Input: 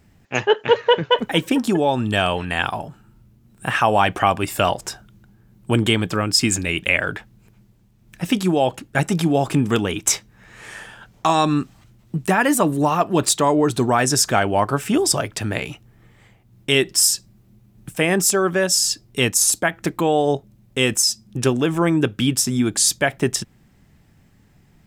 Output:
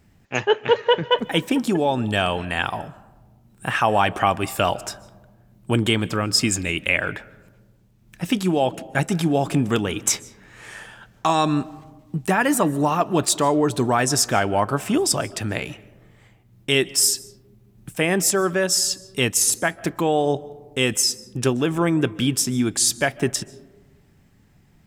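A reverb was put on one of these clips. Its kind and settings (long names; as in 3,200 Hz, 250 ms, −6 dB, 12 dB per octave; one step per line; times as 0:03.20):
comb and all-pass reverb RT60 1.3 s, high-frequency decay 0.3×, pre-delay 105 ms, DRR 20 dB
level −2 dB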